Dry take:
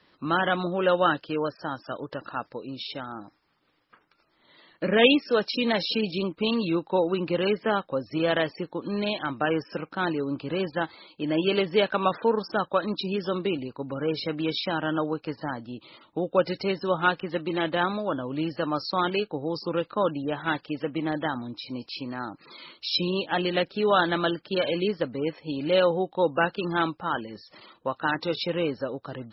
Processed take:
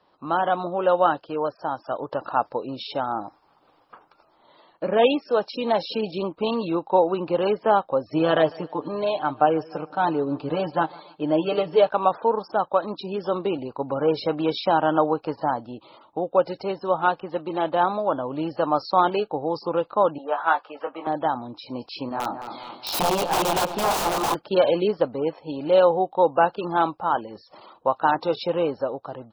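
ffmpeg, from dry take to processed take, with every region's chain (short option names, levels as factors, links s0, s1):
-filter_complex "[0:a]asettb=1/sr,asplit=3[s0][s1][s2];[s0]atrim=end=8.084[s3];[s1]atrim=start=8.08:end=11.89,asetpts=PTS-STARTPTS,afade=t=in:d=0.004:c=qsin,afade=t=out:st=3.806:d=0.004:c=qsin,aecho=1:1:6.7:0.75,atrim=end_sample=168021,aecho=1:1:149|298|447:0.0708|0.0304|0.0131,atrim=end_sample=168021[s4];[s2]atrim=start=11.886[s5];[s3][s4]acrossfade=d=0.004:c1=hsin:c2=qsin[s6];[s6][s5]acrossfade=d=0.004:c1=qsin:c2=hsin,asettb=1/sr,asplit=3[s7][s8][s9];[s7]atrim=end=20.184[s10];[s8]atrim=start=20.18:end=21.07,asetpts=PTS-STARTPTS,afade=t=in:d=0.004:c=qsin,afade=t=out:st=0.886:d=0.004:c=qsin,highpass=520,lowpass=3900,equalizer=f=1300:w=1.3:g=8,asplit=2[s11][s12];[s12]adelay=18,volume=0.501[s13];[s11][s13]amix=inputs=2:normalize=0,atrim=end_sample=39249[s14];[s9]atrim=start=21.066[s15];[s10][s14]acrossfade=d=0.004:c1=hsin:c2=qsin[s16];[s16][s15]acrossfade=d=0.004:c1=qsin:c2=hsin,asettb=1/sr,asplit=3[s17][s18][s19];[s17]atrim=end=22.094[s20];[s18]atrim=start=22.09:end=24.35,asetpts=PTS-STARTPTS,afade=t=in:d=0.004:c=qsin,afade=t=out:st=2.256:d=0.004:c=qsin,flanger=delay=20:depth=4.8:speed=2.3,aeval=exprs='(mod(17.8*val(0)+1,2)-1)/17.8':c=same,asplit=2[s21][s22];[s22]adelay=216,lowpass=f=3700:p=1,volume=0.335,asplit=2[s23][s24];[s24]adelay=216,lowpass=f=3700:p=1,volume=0.49,asplit=2[s25][s26];[s26]adelay=216,lowpass=f=3700:p=1,volume=0.49,asplit=2[s27][s28];[s28]adelay=216,lowpass=f=3700:p=1,volume=0.49,asplit=2[s29][s30];[s30]adelay=216,lowpass=f=3700:p=1,volume=0.49[s31];[s21][s23][s25][s27][s29][s31]amix=inputs=6:normalize=0,atrim=end_sample=99666[s32];[s19]atrim=start=24.346[s33];[s20][s32]acrossfade=d=0.004:c1=hsin:c2=qsin[s34];[s34][s33]acrossfade=d=0.004:c1=qsin:c2=hsin,firequalizer=gain_entry='entry(210,0);entry(780,13);entry(1900,-6);entry(2700,-2)':delay=0.05:min_phase=1,dynaudnorm=f=320:g=5:m=3.76,volume=0.531"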